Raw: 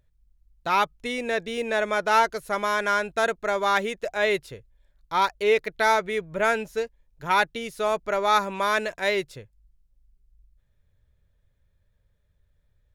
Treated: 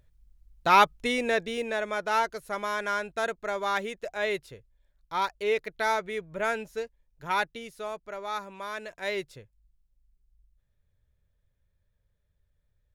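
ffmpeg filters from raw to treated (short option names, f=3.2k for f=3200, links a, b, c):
-af "volume=10.5dB,afade=t=out:st=0.93:d=0.86:silence=0.334965,afade=t=out:st=7.39:d=0.6:silence=0.446684,afade=t=in:st=8.79:d=0.41:silence=0.446684"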